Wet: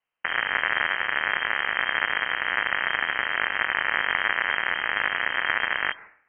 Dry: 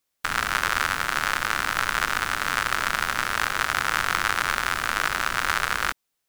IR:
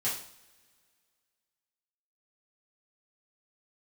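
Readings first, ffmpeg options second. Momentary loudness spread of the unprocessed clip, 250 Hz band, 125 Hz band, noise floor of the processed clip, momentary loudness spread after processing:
2 LU, -5.0 dB, under -10 dB, -65 dBFS, 2 LU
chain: -filter_complex "[0:a]asplit=2[a][b];[b]highpass=670[c];[1:a]atrim=start_sample=2205,highshelf=f=4.2k:g=11,adelay=118[d];[c][d]afir=irnorm=-1:irlink=0,volume=-26dB[e];[a][e]amix=inputs=2:normalize=0,lowpass=f=2.7k:t=q:w=0.5098,lowpass=f=2.7k:t=q:w=0.6013,lowpass=f=2.7k:t=q:w=0.9,lowpass=f=2.7k:t=q:w=2.563,afreqshift=-3200"

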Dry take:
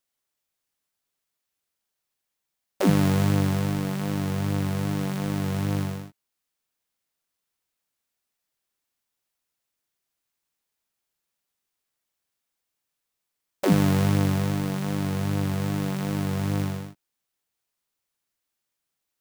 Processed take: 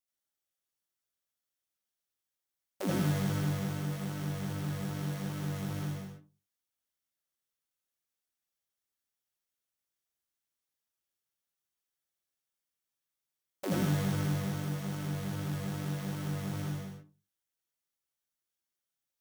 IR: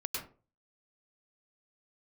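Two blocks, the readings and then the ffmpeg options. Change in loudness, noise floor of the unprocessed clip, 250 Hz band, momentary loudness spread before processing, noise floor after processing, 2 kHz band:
-9.5 dB, -83 dBFS, -10.0 dB, 7 LU, under -85 dBFS, -8.0 dB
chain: -filter_complex "[0:a]highshelf=f=6.6k:g=5[a];[1:a]atrim=start_sample=2205,asetrate=57330,aresample=44100[b];[a][b]afir=irnorm=-1:irlink=0,volume=-9dB"

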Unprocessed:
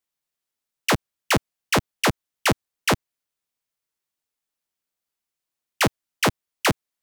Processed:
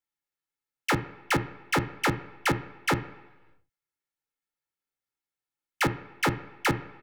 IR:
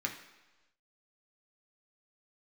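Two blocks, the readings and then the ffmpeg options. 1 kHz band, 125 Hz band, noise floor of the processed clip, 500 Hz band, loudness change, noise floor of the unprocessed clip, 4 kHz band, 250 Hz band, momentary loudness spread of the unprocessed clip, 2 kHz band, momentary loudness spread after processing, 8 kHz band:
-3.5 dB, -3.0 dB, under -85 dBFS, -6.0 dB, -5.0 dB, under -85 dBFS, -8.5 dB, -3.5 dB, 1 LU, -4.0 dB, 1 LU, -9.5 dB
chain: -filter_complex "[0:a]bass=f=250:g=6,treble=f=4k:g=-2,aecho=1:1:2.3:0.52,asplit=2[a][b];[1:a]atrim=start_sample=2205,lowpass=2.5k[c];[b][c]afir=irnorm=-1:irlink=0,volume=-4.5dB[d];[a][d]amix=inputs=2:normalize=0,volume=-8.5dB"

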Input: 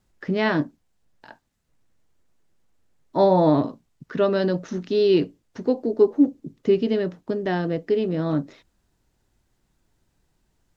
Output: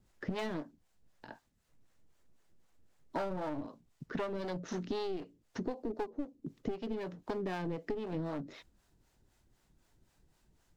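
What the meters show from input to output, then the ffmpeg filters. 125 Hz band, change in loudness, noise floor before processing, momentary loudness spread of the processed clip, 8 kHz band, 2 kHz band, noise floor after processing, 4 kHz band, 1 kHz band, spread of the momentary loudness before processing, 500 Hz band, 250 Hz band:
-15.0 dB, -17.0 dB, -71 dBFS, 16 LU, n/a, -14.0 dB, -74 dBFS, -14.5 dB, -14.5 dB, 11 LU, -18.0 dB, -16.5 dB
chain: -filter_complex "[0:a]aeval=exprs='clip(val(0),-1,0.0531)':c=same,acrossover=split=480[a][b];[a]aeval=exprs='val(0)*(1-0.7/2+0.7/2*cos(2*PI*3.9*n/s))':c=same[c];[b]aeval=exprs='val(0)*(1-0.7/2-0.7/2*cos(2*PI*3.9*n/s))':c=same[d];[c][d]amix=inputs=2:normalize=0,acompressor=threshold=-35dB:ratio=20,volume=2dB"

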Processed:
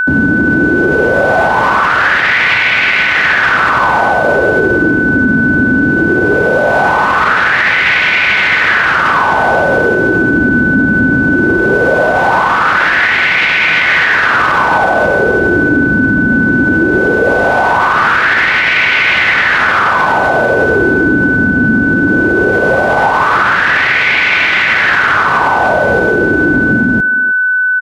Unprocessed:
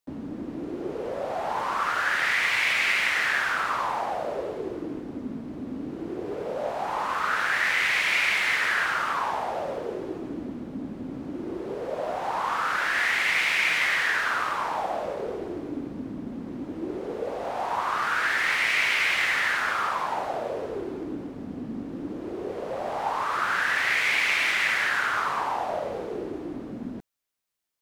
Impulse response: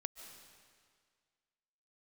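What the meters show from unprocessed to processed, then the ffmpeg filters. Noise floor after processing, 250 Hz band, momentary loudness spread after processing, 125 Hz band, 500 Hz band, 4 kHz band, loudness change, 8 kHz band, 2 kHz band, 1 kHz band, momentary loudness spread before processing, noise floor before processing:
-11 dBFS, +22.5 dB, 2 LU, +25.5 dB, +19.0 dB, +12.0 dB, +17.0 dB, n/a, +18.0 dB, +16.0 dB, 14 LU, -38 dBFS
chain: -filter_complex "[0:a]acrossover=split=5800[a][b];[b]acompressor=threshold=-48dB:ratio=4:attack=1:release=60[c];[a][c]amix=inputs=2:normalize=0,highpass=52,lowshelf=f=220:g=11,acrossover=split=4800[d][e];[e]acompressor=threshold=-59dB:ratio=6[f];[d][f]amix=inputs=2:normalize=0,aeval=exprs='val(0)+0.0282*sin(2*PI*1500*n/s)':c=same,asplit=2[g][h];[h]adelay=310,highpass=300,lowpass=3.4k,asoftclip=type=hard:threshold=-19.5dB,volume=-16dB[i];[g][i]amix=inputs=2:normalize=0,alimiter=level_in=22.5dB:limit=-1dB:release=50:level=0:latency=1,volume=-1dB"

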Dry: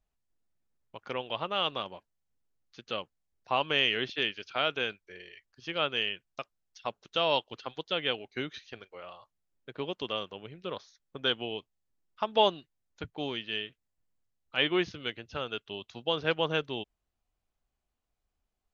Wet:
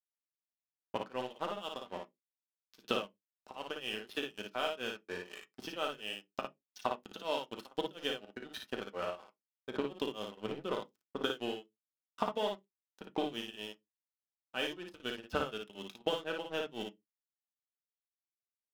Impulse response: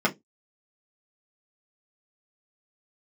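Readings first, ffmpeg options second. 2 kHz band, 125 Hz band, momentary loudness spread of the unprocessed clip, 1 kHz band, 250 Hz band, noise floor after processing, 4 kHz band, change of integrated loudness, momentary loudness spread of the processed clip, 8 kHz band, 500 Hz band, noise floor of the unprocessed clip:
-8.5 dB, -8.5 dB, 19 LU, -6.0 dB, -3.5 dB, under -85 dBFS, -9.5 dB, -7.5 dB, 10 LU, n/a, -5.0 dB, -84 dBFS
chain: -filter_complex "[0:a]bandreject=f=2.1k:w=5.2,acompressor=threshold=-41dB:ratio=10,aeval=exprs='sgn(val(0))*max(abs(val(0))-0.002,0)':c=same,tremolo=f=4.1:d=0.98,aecho=1:1:35|56:0.224|0.596,asplit=2[a][b];[1:a]atrim=start_sample=2205[c];[b][c]afir=irnorm=-1:irlink=0,volume=-16.5dB[d];[a][d]amix=inputs=2:normalize=0,volume=9dB"

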